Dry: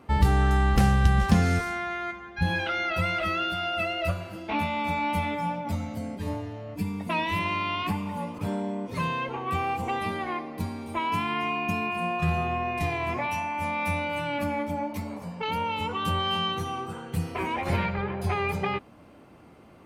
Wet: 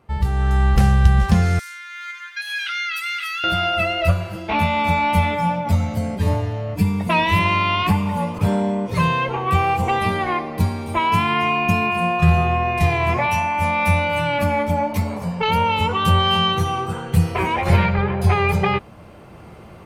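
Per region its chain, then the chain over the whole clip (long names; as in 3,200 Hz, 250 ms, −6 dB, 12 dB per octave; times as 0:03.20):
0:01.59–0:03.44: high-shelf EQ 3,900 Hz +11.5 dB + downward compressor 2.5 to 1, threshold −35 dBFS + Butterworth high-pass 1,400 Hz
whole clip: parametric band 270 Hz −13 dB 0.33 octaves; automatic gain control gain up to 16 dB; low-shelf EQ 190 Hz +6 dB; level −5 dB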